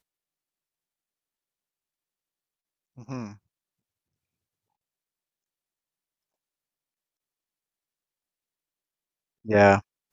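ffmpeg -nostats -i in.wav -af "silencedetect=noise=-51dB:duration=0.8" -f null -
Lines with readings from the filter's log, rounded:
silence_start: 0.00
silence_end: 2.97 | silence_duration: 2.97
silence_start: 3.37
silence_end: 9.45 | silence_duration: 6.07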